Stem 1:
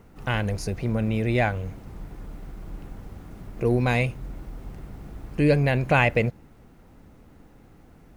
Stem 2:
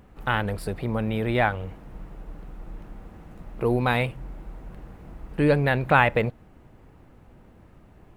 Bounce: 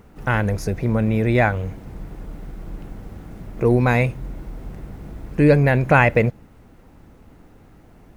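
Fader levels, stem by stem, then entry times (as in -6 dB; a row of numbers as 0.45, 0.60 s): +2.0, -2.0 dB; 0.00, 0.00 s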